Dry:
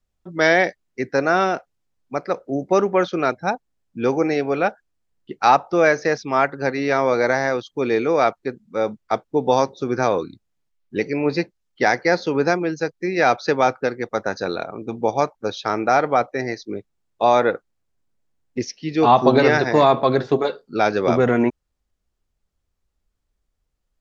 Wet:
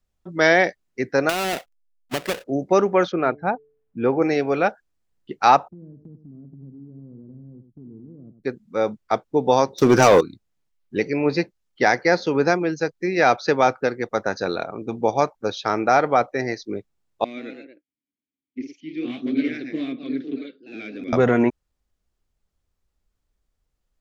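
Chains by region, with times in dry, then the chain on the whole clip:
0:01.29–0:02.44: each half-wave held at its own peak + parametric band 2,700 Hz +5 dB 1.2 octaves + downward compressor 16 to 1, threshold −19 dBFS
0:03.12–0:04.22: Gaussian smoothing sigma 3.1 samples + hum removal 145.9 Hz, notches 3
0:05.68–0:08.44: inverse Chebyshev low-pass filter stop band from 800 Hz, stop band 60 dB + downward compressor 3 to 1, threshold −42 dBFS + single-tap delay 95 ms −10 dB
0:09.78–0:10.21: parametric band 5,700 Hz +7 dB 0.34 octaves + leveller curve on the samples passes 3
0:17.24–0:21.13: hard clipping −7 dBFS + formant filter i + delay with pitch and tempo change per echo 128 ms, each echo +1 semitone, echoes 2, each echo −6 dB
whole clip: no processing

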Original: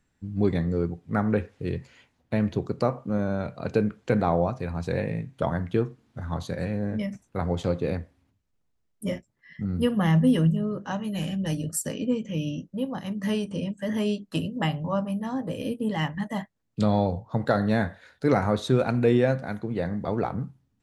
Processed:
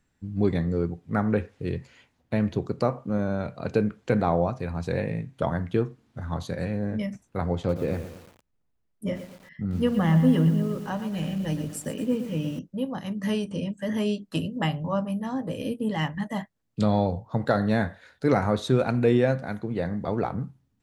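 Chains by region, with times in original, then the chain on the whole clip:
0:07.57–0:12.59: high-shelf EQ 3,900 Hz −9 dB + feedback echo at a low word length 117 ms, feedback 55%, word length 7 bits, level −10 dB
whole clip: no processing

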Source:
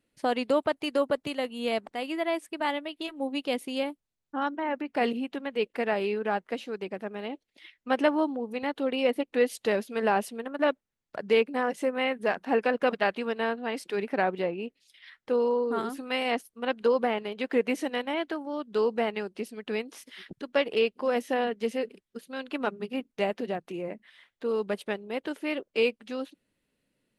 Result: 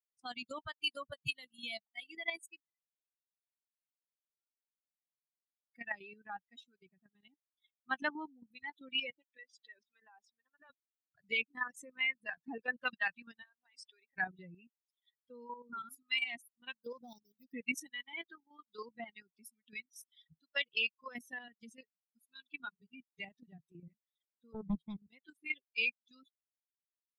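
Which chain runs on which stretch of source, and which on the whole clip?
0:02.60–0:05.69: downward compressor 2.5 to 1, threshold −39 dBFS + low-pass filter 2,100 Hz 24 dB per octave + first difference
0:09.10–0:10.70: high-pass filter 360 Hz + downward compressor 4 to 1, threshold −28 dBFS + high-frequency loss of the air 130 metres
0:12.31–0:12.71: parametric band 420 Hz +6.5 dB 2 octaves + downward compressor 2 to 1, threshold −21 dBFS
0:13.42–0:14.17: band-pass filter 430–7,400 Hz + downward compressor 20 to 1, threshold −30 dBFS
0:16.78–0:17.54: running median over 15 samples + phaser swept by the level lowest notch 560 Hz, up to 2,000 Hz, full sweep at −27 dBFS
0:24.54–0:25.07: spectral tilt −4 dB per octave + highs frequency-modulated by the lows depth 0.46 ms
whole clip: spectral dynamics exaggerated over time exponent 3; drawn EQ curve 160 Hz 0 dB, 420 Hz −25 dB, 2,200 Hz +3 dB, 5,300 Hz −2 dB; output level in coarse steps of 10 dB; level +8.5 dB

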